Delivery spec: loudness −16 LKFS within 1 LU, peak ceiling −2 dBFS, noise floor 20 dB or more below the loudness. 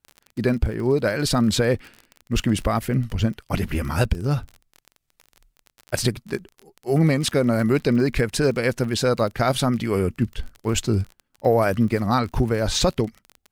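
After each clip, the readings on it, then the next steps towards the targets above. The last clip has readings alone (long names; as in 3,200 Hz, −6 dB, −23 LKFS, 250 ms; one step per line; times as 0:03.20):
crackle rate 32 per second; integrated loudness −22.5 LKFS; sample peak −7.5 dBFS; target loudness −16.0 LKFS
→ click removal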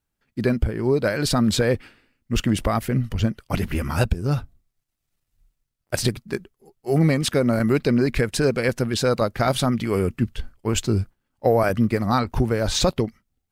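crackle rate 0 per second; integrated loudness −22.5 LKFS; sample peak −7.5 dBFS; target loudness −16.0 LKFS
→ level +6.5 dB
brickwall limiter −2 dBFS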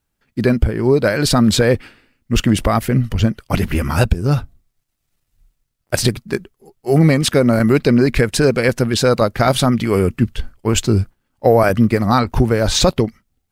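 integrated loudness −16.5 LKFS; sample peak −2.0 dBFS; background noise floor −72 dBFS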